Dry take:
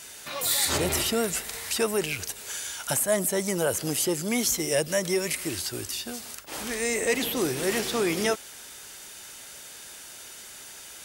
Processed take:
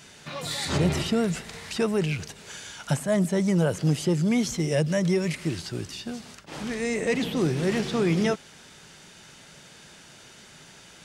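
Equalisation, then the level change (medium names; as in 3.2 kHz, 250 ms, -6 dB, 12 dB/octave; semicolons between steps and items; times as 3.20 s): tape spacing loss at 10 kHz 26 dB; peaking EQ 160 Hz +13.5 dB 0.94 oct; treble shelf 3.6 kHz +12 dB; 0.0 dB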